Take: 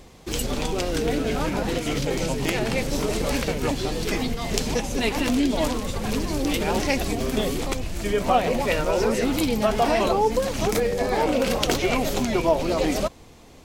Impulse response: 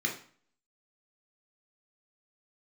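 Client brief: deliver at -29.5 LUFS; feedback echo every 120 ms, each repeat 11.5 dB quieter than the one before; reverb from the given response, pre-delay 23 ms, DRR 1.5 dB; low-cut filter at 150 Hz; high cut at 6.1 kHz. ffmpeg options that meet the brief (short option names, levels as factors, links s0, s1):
-filter_complex "[0:a]highpass=150,lowpass=6100,aecho=1:1:120|240|360:0.266|0.0718|0.0194,asplit=2[s0][s1];[1:a]atrim=start_sample=2205,adelay=23[s2];[s1][s2]afir=irnorm=-1:irlink=0,volume=0.398[s3];[s0][s3]amix=inputs=2:normalize=0,volume=0.422"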